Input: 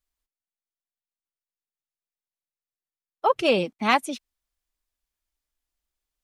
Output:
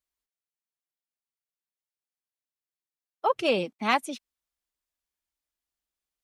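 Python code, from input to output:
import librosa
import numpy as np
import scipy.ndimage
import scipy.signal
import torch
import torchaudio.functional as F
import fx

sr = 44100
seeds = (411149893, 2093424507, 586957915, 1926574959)

y = fx.highpass(x, sr, hz=110.0, slope=6)
y = y * librosa.db_to_amplitude(-3.5)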